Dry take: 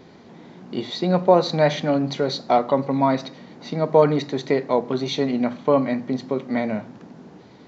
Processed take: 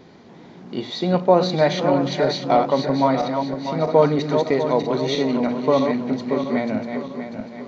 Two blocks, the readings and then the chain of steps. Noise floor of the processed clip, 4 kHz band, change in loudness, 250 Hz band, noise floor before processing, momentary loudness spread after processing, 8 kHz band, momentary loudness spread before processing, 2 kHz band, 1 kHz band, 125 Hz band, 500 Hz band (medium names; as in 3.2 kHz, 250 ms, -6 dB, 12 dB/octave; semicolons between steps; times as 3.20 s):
-44 dBFS, +1.5 dB, +1.5 dB, +1.5 dB, -47 dBFS, 12 LU, no reading, 13 LU, +1.5 dB, +1.5 dB, +1.0 dB, +1.5 dB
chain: backward echo that repeats 322 ms, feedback 63%, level -6 dB; resampled via 16 kHz